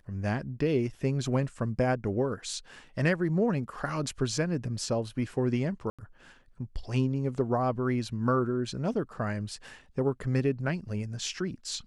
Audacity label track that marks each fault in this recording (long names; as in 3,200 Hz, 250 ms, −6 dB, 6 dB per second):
5.900000	5.990000	drop-out 86 ms